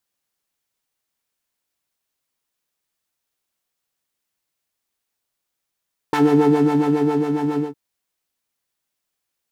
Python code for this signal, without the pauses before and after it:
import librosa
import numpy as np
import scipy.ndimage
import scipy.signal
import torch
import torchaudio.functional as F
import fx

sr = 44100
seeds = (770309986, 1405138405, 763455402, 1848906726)

y = fx.sub_patch_wobble(sr, seeds[0], note=62, wave='triangle', wave2='saw', interval_st=7, level2_db=-3, sub_db=-8.5, noise_db=-6.0, kind='bandpass', cutoff_hz=310.0, q=1.3, env_oct=1.5, env_decay_s=0.15, env_sustain_pct=25, attack_ms=1.1, decay_s=1.15, sustain_db=-7, release_s=0.15, note_s=1.46, lfo_hz=7.3, wobble_oct=0.9)